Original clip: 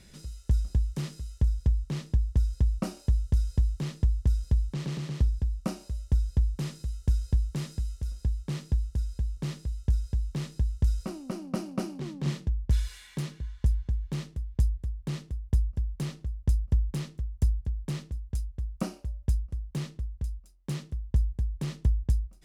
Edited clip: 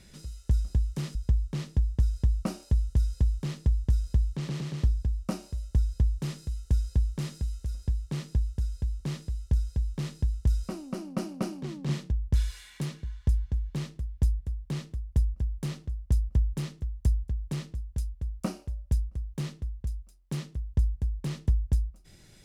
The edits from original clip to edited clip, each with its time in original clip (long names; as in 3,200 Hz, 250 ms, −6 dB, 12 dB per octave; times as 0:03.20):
0:01.15–0:01.52: remove